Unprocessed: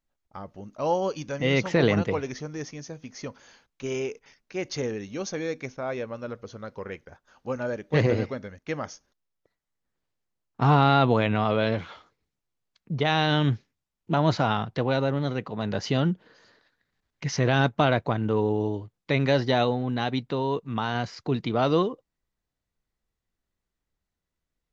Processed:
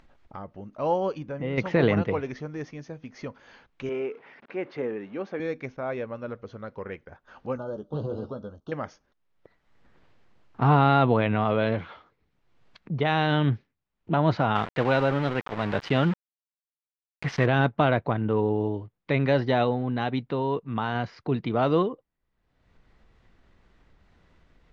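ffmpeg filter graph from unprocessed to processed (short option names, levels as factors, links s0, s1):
-filter_complex "[0:a]asettb=1/sr,asplit=3[s0][s1][s2];[s0]atrim=end=1.184[s3];[s1]atrim=start=1.18:end=1.58,asetpts=PTS-STARTPTS,afade=t=in:d=0.004:c=qsin,afade=t=out:st=0.396:d=0.004:c=qsin,highshelf=f=2100:g=-12,acompressor=threshold=0.0355:ratio=2:attack=3.2:release=140:knee=1:detection=peak[s4];[s2]atrim=start=1.576[s5];[s3][s4]acrossfade=d=0.004:c1=hsin:c2=qsin[s6];[s6][s5]acrossfade=d=0.004:c1=qsin:c2=hsin,asettb=1/sr,asplit=3[s7][s8][s9];[s7]atrim=end=3.894[s10];[s8]atrim=start=3.89:end=5.4,asetpts=PTS-STARTPTS,afade=t=in:d=0.004:c=qsin,afade=t=out:st=1.506:d=0.004:c=qsin,aeval=exprs='val(0)+0.5*0.00501*sgn(val(0))':c=same,highpass=230,lowpass=2400[s11];[s9]atrim=start=5.396[s12];[s10][s11]acrossfade=d=0.004:c1=hsin:c2=qsin[s13];[s13][s12]acrossfade=d=0.004:c1=qsin:c2=hsin,asettb=1/sr,asplit=3[s14][s15][s16];[s14]atrim=end=7.574[s17];[s15]atrim=start=7.57:end=8.72,asetpts=PTS-STARTPTS,afade=t=in:d=0.004:c=qsin,afade=t=out:st=1.146:d=0.004:c=qsin,acompressor=threshold=0.0316:ratio=3:attack=3.2:release=140:knee=1:detection=peak,asuperstop=centerf=2100:order=8:qfactor=1.2,asplit=2[s18][s19];[s19]adelay=14,volume=0.355[s20];[s18][s20]amix=inputs=2:normalize=0,atrim=end_sample=50715[s21];[s16]atrim=start=8.716[s22];[s17][s21]acrossfade=d=0.004:c1=hsin:c2=qsin[s23];[s23][s22]acrossfade=d=0.004:c1=qsin:c2=hsin,asettb=1/sr,asplit=3[s24][s25][s26];[s24]atrim=end=14.554[s27];[s25]atrim=start=14.55:end=17.46,asetpts=PTS-STARTPTS,afade=t=in:d=0.004:c=qsin,afade=t=out:st=2.906:d=0.004:c=qsin,aeval=exprs='val(0)*gte(abs(val(0)),0.0237)':c=same,equalizer=f=1900:w=0.4:g=6[s28];[s26]atrim=start=17.456[s29];[s27][s28]acrossfade=d=0.004:c1=hsin:c2=qsin[s30];[s30][s29]acrossfade=d=0.004:c1=qsin:c2=hsin,lowpass=2800,acompressor=mode=upward:threshold=0.0126:ratio=2.5"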